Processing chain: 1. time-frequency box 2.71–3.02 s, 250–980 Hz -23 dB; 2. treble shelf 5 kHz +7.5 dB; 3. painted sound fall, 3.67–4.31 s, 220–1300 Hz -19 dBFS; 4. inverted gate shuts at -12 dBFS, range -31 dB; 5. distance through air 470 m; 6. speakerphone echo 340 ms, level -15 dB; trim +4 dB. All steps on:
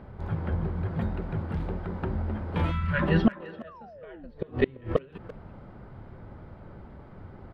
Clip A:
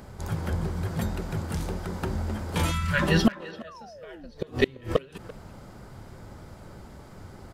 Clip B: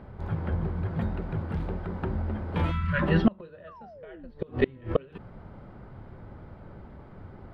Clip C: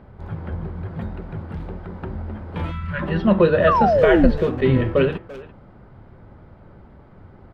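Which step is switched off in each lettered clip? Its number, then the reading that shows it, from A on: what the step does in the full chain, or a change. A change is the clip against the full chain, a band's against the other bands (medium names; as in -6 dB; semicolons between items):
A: 5, 4 kHz band +9.5 dB; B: 6, echo-to-direct -16.0 dB to none; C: 4, momentary loudness spread change -3 LU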